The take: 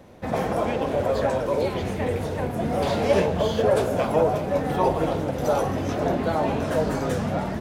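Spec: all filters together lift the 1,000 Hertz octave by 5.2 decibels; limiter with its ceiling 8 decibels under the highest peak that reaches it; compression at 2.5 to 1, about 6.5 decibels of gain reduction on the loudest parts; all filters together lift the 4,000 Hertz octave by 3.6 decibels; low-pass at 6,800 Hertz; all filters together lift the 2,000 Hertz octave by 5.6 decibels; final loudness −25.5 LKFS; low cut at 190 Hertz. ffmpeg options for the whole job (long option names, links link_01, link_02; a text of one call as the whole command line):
ffmpeg -i in.wav -af "highpass=190,lowpass=6800,equalizer=frequency=1000:width_type=o:gain=6,equalizer=frequency=2000:width_type=o:gain=4.5,equalizer=frequency=4000:width_type=o:gain=3,acompressor=threshold=-23dB:ratio=2.5,volume=3dB,alimiter=limit=-16.5dB:level=0:latency=1" out.wav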